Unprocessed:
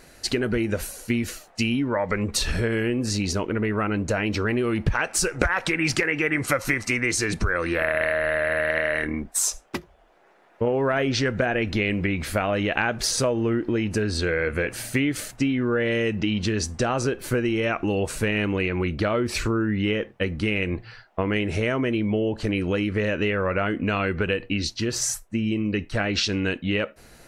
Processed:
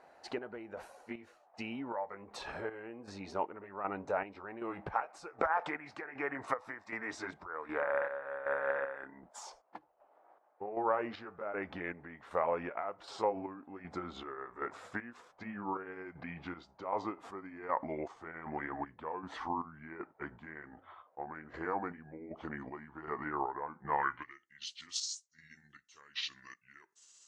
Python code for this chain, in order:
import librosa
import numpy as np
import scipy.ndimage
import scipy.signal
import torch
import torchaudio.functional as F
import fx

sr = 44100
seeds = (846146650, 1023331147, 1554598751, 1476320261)

y = fx.pitch_glide(x, sr, semitones=-6.5, runs='starting unshifted')
y = fx.filter_sweep_bandpass(y, sr, from_hz=820.0, to_hz=6600.0, start_s=23.94, end_s=24.44, q=2.9)
y = fx.chopper(y, sr, hz=1.3, depth_pct=60, duty_pct=50)
y = y * librosa.db_to_amplitude(1.5)